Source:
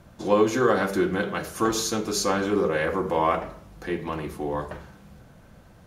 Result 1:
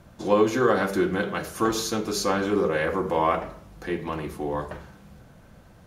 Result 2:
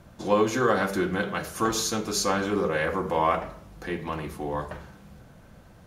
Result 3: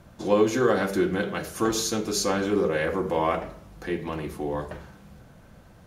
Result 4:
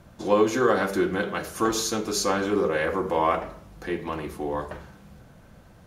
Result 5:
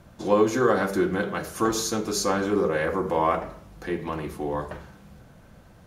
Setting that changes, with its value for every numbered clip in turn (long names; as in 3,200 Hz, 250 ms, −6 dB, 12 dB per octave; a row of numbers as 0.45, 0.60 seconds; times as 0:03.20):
dynamic equaliser, frequency: 7,300, 360, 1,100, 140, 2,900 Hertz